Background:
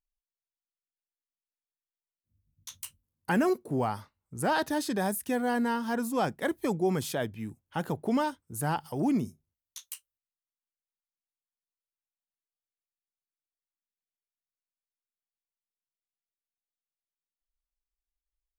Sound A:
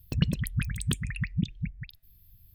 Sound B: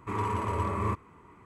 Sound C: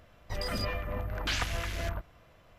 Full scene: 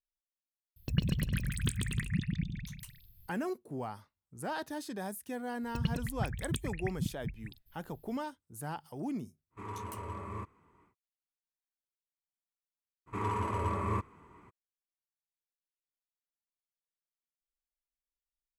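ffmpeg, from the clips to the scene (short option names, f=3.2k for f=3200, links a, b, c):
-filter_complex "[1:a]asplit=2[a][b];[2:a]asplit=2[c][d];[0:a]volume=-10dB[e];[a]aecho=1:1:140|238|306.6|354.6|388.2:0.631|0.398|0.251|0.158|0.1[f];[b]acontrast=85[g];[f]atrim=end=2.54,asetpts=PTS-STARTPTS,volume=-5dB,afade=t=in:d=0.004:c=hsin,afade=t=out:st=2.536:d=0.004:c=hsin,adelay=760[h];[g]atrim=end=2.54,asetpts=PTS-STARTPTS,volume=-13.5dB,afade=t=in:d=0.004:c=hsin,afade=t=out:st=2.536:d=0.004:c=hsin,adelay=5630[i];[c]atrim=end=1.45,asetpts=PTS-STARTPTS,volume=-11.5dB,afade=t=in:d=0.1,afade=t=out:st=1.35:d=0.1,adelay=9500[j];[d]atrim=end=1.45,asetpts=PTS-STARTPTS,volume=-3dB,afade=t=in:d=0.02,afade=t=out:st=1.43:d=0.02,adelay=13060[k];[e][h][i][j][k]amix=inputs=5:normalize=0"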